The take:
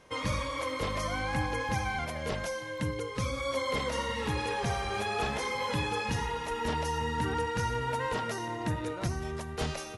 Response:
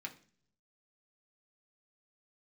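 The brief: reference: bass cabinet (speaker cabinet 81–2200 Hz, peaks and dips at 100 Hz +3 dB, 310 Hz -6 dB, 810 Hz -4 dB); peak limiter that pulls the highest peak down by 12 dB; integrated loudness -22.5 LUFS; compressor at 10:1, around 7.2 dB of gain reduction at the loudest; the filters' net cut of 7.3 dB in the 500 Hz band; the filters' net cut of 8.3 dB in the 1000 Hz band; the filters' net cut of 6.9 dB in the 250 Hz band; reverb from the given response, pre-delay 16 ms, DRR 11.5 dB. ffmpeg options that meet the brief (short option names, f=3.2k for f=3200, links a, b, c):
-filter_complex "[0:a]equalizer=f=250:t=o:g=-6,equalizer=f=500:t=o:g=-4.5,equalizer=f=1k:t=o:g=-6,acompressor=threshold=-36dB:ratio=10,alimiter=level_in=11dB:limit=-24dB:level=0:latency=1,volume=-11dB,asplit=2[a][b];[1:a]atrim=start_sample=2205,adelay=16[c];[b][c]afir=irnorm=-1:irlink=0,volume=-10dB[d];[a][d]amix=inputs=2:normalize=0,highpass=f=81:w=0.5412,highpass=f=81:w=1.3066,equalizer=f=100:t=q:w=4:g=3,equalizer=f=310:t=q:w=4:g=-6,equalizer=f=810:t=q:w=4:g=-4,lowpass=f=2.2k:w=0.5412,lowpass=f=2.2k:w=1.3066,volume=23dB"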